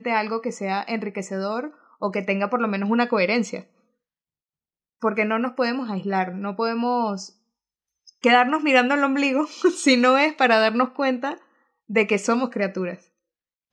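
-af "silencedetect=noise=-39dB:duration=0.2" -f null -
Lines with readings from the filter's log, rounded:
silence_start: 1.70
silence_end: 2.02 | silence_duration: 0.32
silence_start: 3.62
silence_end: 5.02 | silence_duration: 1.40
silence_start: 7.28
silence_end: 8.08 | silence_duration: 0.80
silence_start: 11.37
silence_end: 11.90 | silence_duration: 0.53
silence_start: 12.95
silence_end: 13.73 | silence_duration: 0.78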